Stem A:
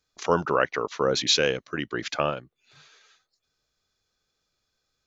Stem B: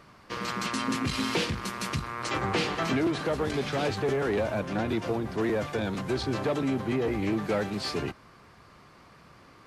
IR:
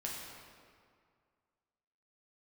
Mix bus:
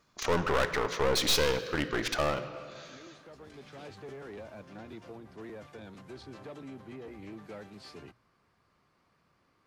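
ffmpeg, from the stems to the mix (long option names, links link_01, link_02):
-filter_complex "[0:a]asoftclip=type=tanh:threshold=-20.5dB,volume=1dB,asplit=3[link_01][link_02][link_03];[link_02]volume=-8.5dB[link_04];[1:a]volume=-17dB[link_05];[link_03]apad=whole_len=426336[link_06];[link_05][link_06]sidechaincompress=threshold=-40dB:ratio=8:attack=16:release=1400[link_07];[2:a]atrim=start_sample=2205[link_08];[link_04][link_08]afir=irnorm=-1:irlink=0[link_09];[link_01][link_07][link_09]amix=inputs=3:normalize=0,bandreject=frequency=60:width_type=h:width=6,bandreject=frequency=120:width_type=h:width=6,aeval=exprs='clip(val(0),-1,0.0211)':channel_layout=same"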